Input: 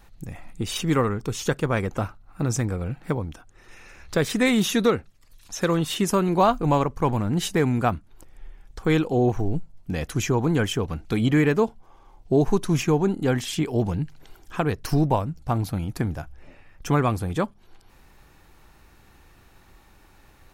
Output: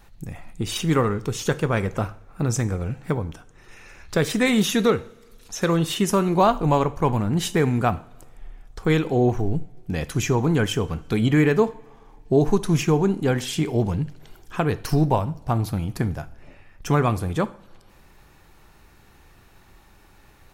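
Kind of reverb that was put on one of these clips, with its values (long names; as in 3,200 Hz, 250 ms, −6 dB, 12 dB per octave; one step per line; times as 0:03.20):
coupled-rooms reverb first 0.48 s, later 2.2 s, from −21 dB, DRR 12.5 dB
level +1 dB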